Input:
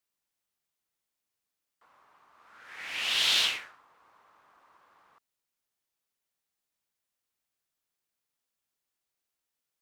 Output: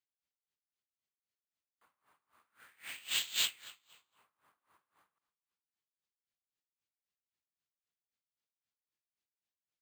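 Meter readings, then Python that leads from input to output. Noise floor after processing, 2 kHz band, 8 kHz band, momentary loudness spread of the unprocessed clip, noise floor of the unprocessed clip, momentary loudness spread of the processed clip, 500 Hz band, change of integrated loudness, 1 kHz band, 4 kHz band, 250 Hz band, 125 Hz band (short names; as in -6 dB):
under -85 dBFS, -10.5 dB, -2.5 dB, 15 LU, under -85 dBFS, 21 LU, -13.0 dB, -7.5 dB, -13.0 dB, -9.5 dB, -10.5 dB, n/a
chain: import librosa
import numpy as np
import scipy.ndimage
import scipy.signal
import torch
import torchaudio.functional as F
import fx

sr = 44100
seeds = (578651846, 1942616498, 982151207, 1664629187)

y = scipy.signal.sosfilt(scipy.signal.butter(2, 57.0, 'highpass', fs=sr, output='sos'), x)
y = fx.peak_eq(y, sr, hz=730.0, db=-7.0, octaves=2.5)
y = fx.echo_feedback(y, sr, ms=228, feedback_pct=34, wet_db=-20.5)
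y = np.repeat(scipy.signal.resample_poly(y, 1, 4), 4)[:len(y)]
y = y * 10.0 ** (-22 * (0.5 - 0.5 * np.cos(2.0 * np.pi * 3.8 * np.arange(len(y)) / sr)) / 20.0)
y = y * 10.0 ** (-1.5 / 20.0)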